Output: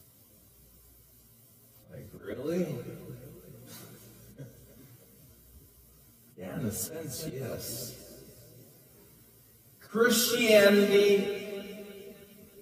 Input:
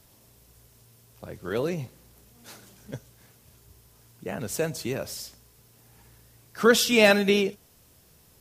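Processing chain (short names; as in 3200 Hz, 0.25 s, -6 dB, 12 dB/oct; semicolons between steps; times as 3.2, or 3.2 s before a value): low shelf 380 Hz +7 dB; notch comb 860 Hz; on a send: split-band echo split 430 Hz, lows 0.271 s, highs 0.206 s, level -15.5 dB; on the sum: auto swell 0.154 s; high shelf 8800 Hz +10 dB; spring tank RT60 1.1 s, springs 32/43/47 ms, chirp 35 ms, DRR 8 dB; plain phase-vocoder stretch 1.5×; gain -2.5 dB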